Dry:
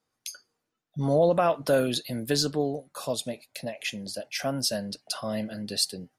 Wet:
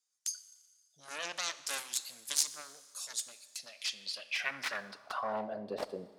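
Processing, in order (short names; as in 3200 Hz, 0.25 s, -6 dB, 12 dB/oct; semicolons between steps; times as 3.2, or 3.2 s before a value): added harmonics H 4 -11 dB, 7 -9 dB, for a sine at -11 dBFS; Schroeder reverb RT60 1.7 s, combs from 29 ms, DRR 14.5 dB; band-pass sweep 7000 Hz -> 570 Hz, 3.49–5.73; gain +3 dB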